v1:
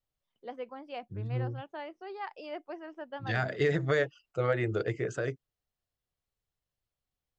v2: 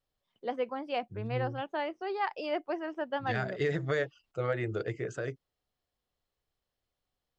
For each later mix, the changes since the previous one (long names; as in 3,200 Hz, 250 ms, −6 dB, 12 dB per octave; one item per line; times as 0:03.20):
first voice +7.5 dB
second voice −3.0 dB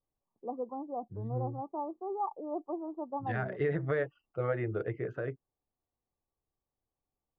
first voice: add Chebyshev low-pass with heavy ripple 1,200 Hz, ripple 6 dB
second voice: add Bessel low-pass filter 1,700 Hz, order 4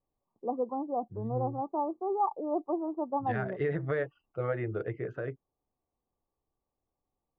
first voice +5.5 dB